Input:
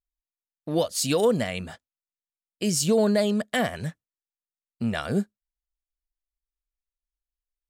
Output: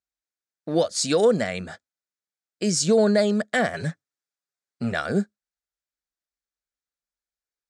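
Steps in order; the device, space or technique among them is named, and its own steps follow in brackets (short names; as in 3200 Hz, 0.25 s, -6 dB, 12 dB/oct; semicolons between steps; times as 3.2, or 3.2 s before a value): 3.73–4.92 comb 7.2 ms, depth 86%; car door speaker (speaker cabinet 110–8100 Hz, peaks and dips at 130 Hz -8 dB, 260 Hz -4 dB, 990 Hz -6 dB, 1500 Hz +4 dB, 2900 Hz -9 dB); gain +3.5 dB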